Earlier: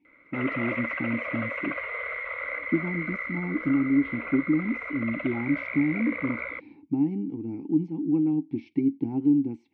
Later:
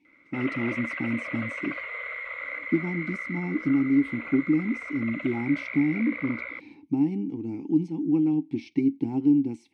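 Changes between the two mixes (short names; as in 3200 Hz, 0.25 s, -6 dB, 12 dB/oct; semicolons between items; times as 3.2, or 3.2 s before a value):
background -7.5 dB; master: remove tape spacing loss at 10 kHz 29 dB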